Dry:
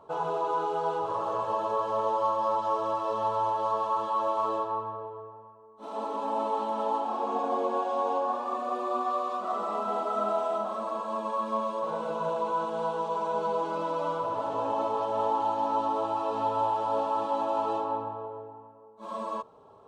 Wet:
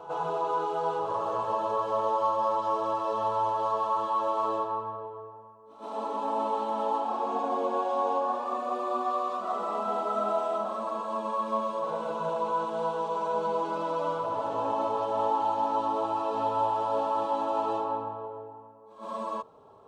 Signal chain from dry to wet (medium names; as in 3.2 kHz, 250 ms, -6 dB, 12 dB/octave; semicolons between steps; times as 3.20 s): pre-echo 124 ms -13.5 dB